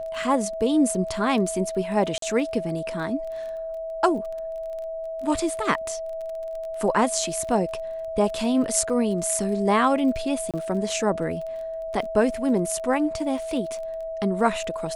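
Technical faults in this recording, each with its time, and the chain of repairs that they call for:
crackle 20/s -33 dBFS
tone 650 Hz -29 dBFS
2.18–2.22 gap 43 ms
10.51–10.54 gap 27 ms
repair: de-click; notch 650 Hz, Q 30; interpolate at 2.18, 43 ms; interpolate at 10.51, 27 ms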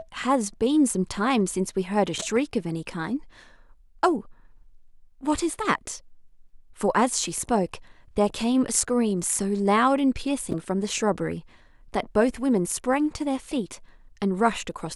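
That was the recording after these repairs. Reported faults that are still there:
none

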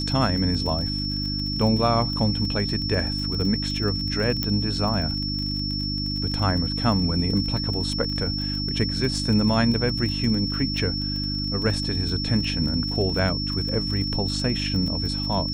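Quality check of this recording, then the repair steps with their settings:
crackle 32/s -29 dBFS
hum 50 Hz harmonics 6 -29 dBFS
tone 5400 Hz -28 dBFS
4.43 pop -10 dBFS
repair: de-click; de-hum 50 Hz, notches 6; notch 5400 Hz, Q 30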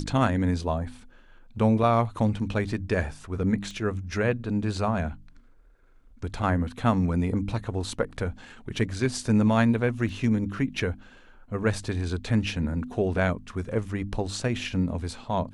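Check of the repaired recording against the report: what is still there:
none

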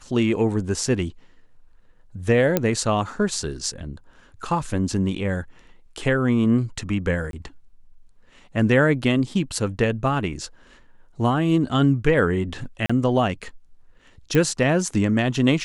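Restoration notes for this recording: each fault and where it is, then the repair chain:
2.57 pop -5 dBFS
7.31–7.33 gap 22 ms
12.86–12.89 gap 35 ms
14.35 pop -9 dBFS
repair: de-click; interpolate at 7.31, 22 ms; interpolate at 12.86, 35 ms

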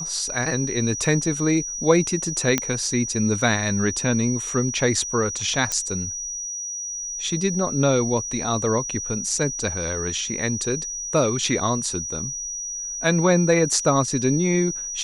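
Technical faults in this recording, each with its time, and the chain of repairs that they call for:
tone 5800 Hz -28 dBFS
2.58 pop -4 dBFS
5.72 pop -9 dBFS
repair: de-click; notch 5800 Hz, Q 30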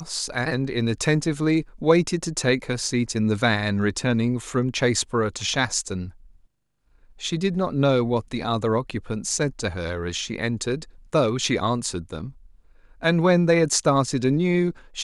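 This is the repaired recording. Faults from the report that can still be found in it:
none

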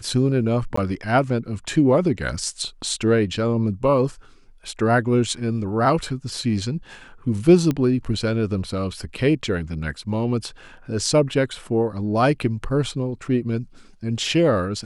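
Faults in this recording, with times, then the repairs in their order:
0.76–0.77 gap 14 ms
7.71 pop -11 dBFS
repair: de-click; interpolate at 0.76, 14 ms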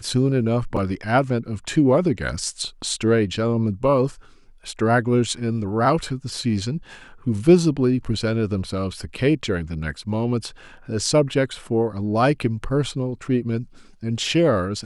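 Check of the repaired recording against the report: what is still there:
none

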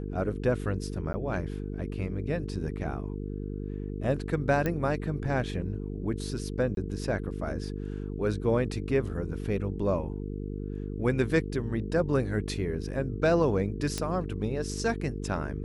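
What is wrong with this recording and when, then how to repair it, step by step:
buzz 50 Hz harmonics 9 -35 dBFS
1.13–1.14 gap 10 ms
4.66 pop -16 dBFS
6.75–6.77 gap 22 ms
13.98 pop -16 dBFS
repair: de-click; de-hum 50 Hz, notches 9; interpolate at 1.13, 10 ms; interpolate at 6.75, 22 ms

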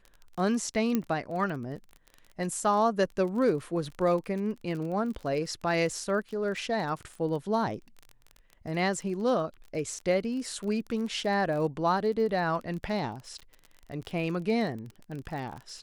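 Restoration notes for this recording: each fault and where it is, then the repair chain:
crackle 31/s -36 dBFS
0.95 pop -14 dBFS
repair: de-click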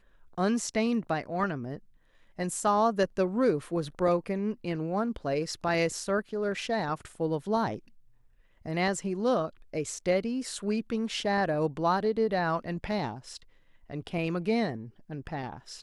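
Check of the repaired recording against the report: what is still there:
0.95 pop

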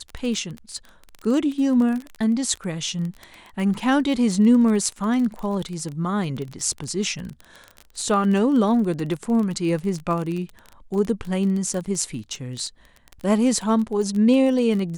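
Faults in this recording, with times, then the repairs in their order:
crackle 26/s -27 dBFS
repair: de-click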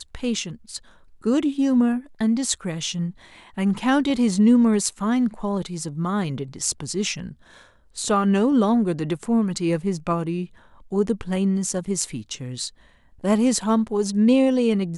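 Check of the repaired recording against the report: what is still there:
none

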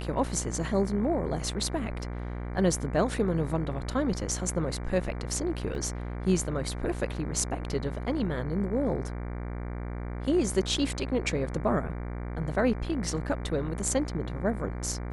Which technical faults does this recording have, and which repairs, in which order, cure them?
buzz 60 Hz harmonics 39 -35 dBFS
5.75 gap 2.1 ms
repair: de-hum 60 Hz, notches 39; interpolate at 5.75, 2.1 ms

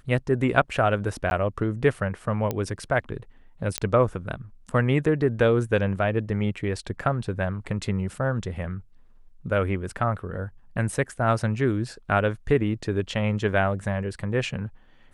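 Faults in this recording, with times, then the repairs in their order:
1.3–1.31 gap 11 ms
2.51 pop -13 dBFS
3.78 pop -7 dBFS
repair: de-click; interpolate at 1.3, 11 ms

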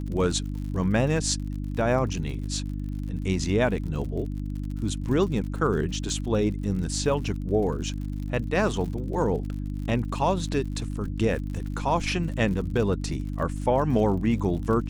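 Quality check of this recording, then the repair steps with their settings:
crackle 59/s -35 dBFS
hum 50 Hz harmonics 6 -31 dBFS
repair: de-click; de-hum 50 Hz, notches 6

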